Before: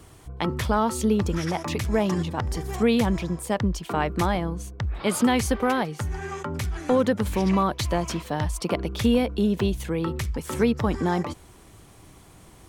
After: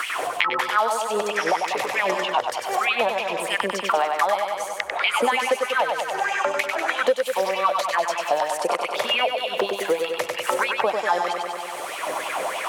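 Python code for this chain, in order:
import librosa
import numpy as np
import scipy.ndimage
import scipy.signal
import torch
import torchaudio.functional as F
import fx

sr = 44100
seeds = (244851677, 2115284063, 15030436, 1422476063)

p1 = fx.cheby_harmonics(x, sr, harmonics=(7,), levels_db=(-40,), full_scale_db=-11.0)
p2 = fx.filter_lfo_highpass(p1, sr, shape='sine', hz=3.2, low_hz=530.0, high_hz=2800.0, q=5.6)
p3 = p2 + fx.echo_feedback(p2, sr, ms=96, feedback_pct=55, wet_db=-5.0, dry=0)
p4 = fx.band_squash(p3, sr, depth_pct=100)
y = F.gain(torch.from_numpy(p4), -1.0).numpy()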